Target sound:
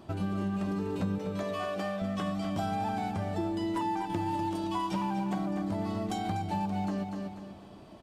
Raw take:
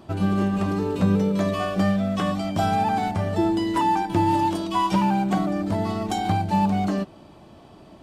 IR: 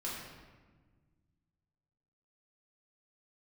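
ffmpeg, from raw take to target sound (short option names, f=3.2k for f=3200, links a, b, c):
-filter_complex "[0:a]asettb=1/sr,asplit=3[a][b][c];[a]atrim=end=1.184[d];[b]atrim=start=1.18:end=2.02,asetpts=PTS-STARTPTS,afade=t=in:d=0.004:c=qsin,afade=t=out:st=0.836:d=0.004:c=qsin,bass=f=250:g=-14,treble=f=4k:g=-2[e];[c]atrim=start=2.016[f];[d][e]acrossfade=d=0.004:c1=hsin:c2=qsin[g];[g][f]acrossfade=d=0.004:c1=qsin:c2=hsin,asplit=2[h][i];[i]aecho=0:1:245|490|735|980:0.355|0.11|0.0341|0.0106[j];[h][j]amix=inputs=2:normalize=0,acompressor=threshold=-28dB:ratio=2.5,volume=-4dB"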